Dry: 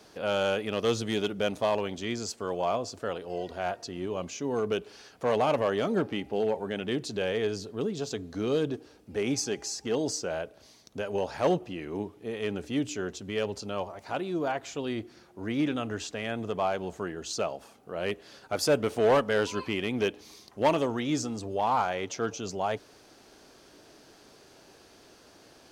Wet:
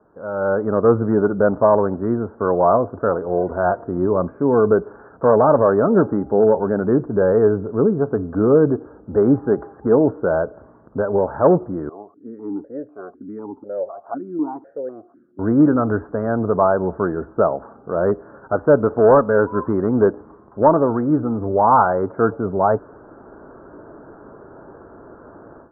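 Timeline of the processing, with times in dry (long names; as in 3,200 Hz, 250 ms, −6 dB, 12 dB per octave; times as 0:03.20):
0:11.89–0:15.39: formant filter that steps through the vowels 4 Hz
whole clip: Butterworth low-pass 1,500 Hz 72 dB per octave; notch filter 750 Hz, Q 12; automatic gain control gain up to 16.5 dB; level −1 dB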